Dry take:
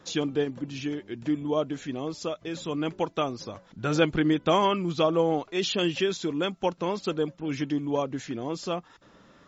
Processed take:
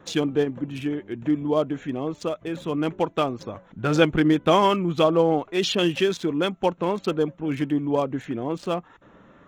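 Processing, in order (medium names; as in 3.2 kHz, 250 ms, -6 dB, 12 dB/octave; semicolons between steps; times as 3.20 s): local Wiener filter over 9 samples; trim +4.5 dB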